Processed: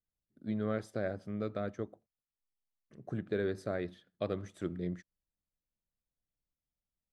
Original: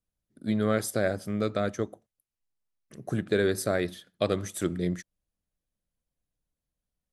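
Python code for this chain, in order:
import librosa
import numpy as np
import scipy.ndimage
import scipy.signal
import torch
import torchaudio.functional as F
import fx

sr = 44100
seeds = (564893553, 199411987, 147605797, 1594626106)

y = fx.spacing_loss(x, sr, db_at_10k=21)
y = y * librosa.db_to_amplitude(-7.5)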